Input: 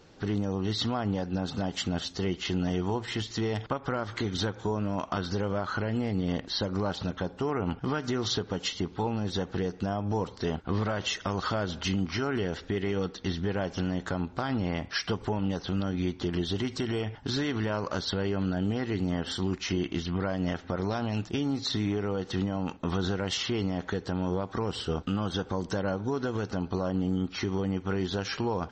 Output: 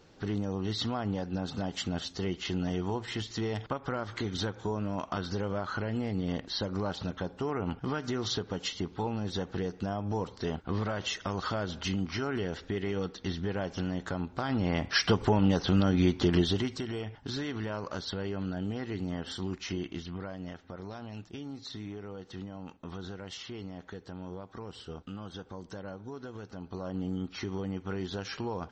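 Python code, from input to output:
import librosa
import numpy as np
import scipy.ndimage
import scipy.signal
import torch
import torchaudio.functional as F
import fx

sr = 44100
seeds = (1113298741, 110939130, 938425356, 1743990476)

y = fx.gain(x, sr, db=fx.line((14.31, -3.0), (15.04, 5.0), (16.39, 5.0), (16.85, -5.5), (19.74, -5.5), (20.55, -12.0), (26.55, -12.0), (27.01, -5.5)))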